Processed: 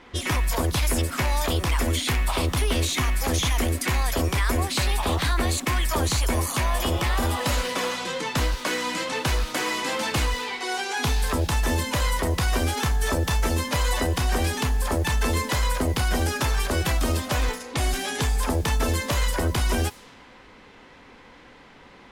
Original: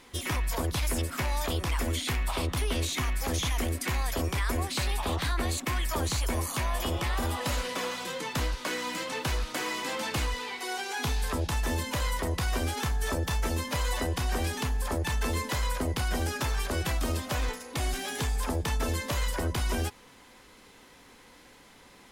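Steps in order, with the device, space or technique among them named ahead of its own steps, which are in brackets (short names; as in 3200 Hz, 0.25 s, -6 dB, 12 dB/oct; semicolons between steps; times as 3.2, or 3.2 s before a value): cassette deck with a dynamic noise filter (white noise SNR 26 dB; low-pass opened by the level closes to 2300 Hz, open at -28 dBFS); gain +6 dB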